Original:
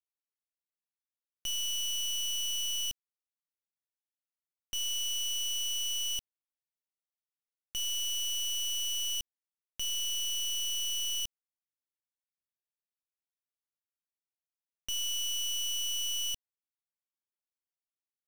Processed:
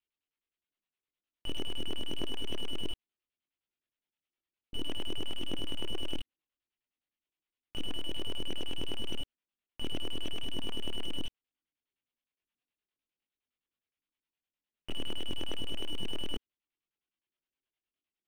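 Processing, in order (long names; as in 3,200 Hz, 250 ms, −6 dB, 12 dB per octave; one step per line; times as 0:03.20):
auto-filter low-pass square 9.7 Hz 330–3,000 Hz
multi-voice chorus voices 6, 0.33 Hz, delay 23 ms, depth 2.7 ms
slew-rate limiting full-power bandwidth 13 Hz
level +6.5 dB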